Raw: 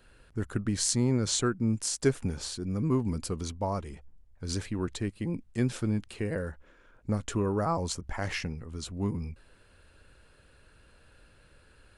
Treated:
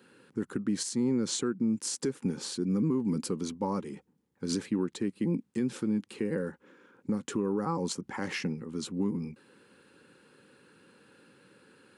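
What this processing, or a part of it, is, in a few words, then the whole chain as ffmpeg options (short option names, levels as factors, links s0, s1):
PA system with an anti-feedback notch: -af "highpass=f=190:w=0.5412,highpass=f=190:w=1.3066,asuperstop=centerf=650:order=4:qfactor=3.5,lowshelf=f=450:g=11.5,alimiter=limit=0.0944:level=0:latency=1:release=277"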